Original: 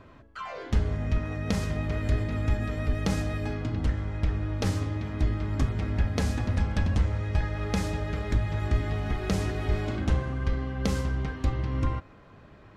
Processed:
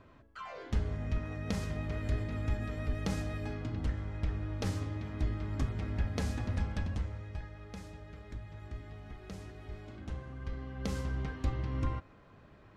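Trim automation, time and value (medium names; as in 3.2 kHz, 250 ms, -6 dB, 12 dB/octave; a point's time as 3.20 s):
6.62 s -7 dB
7.65 s -18 dB
9.84 s -18 dB
11.18 s -6 dB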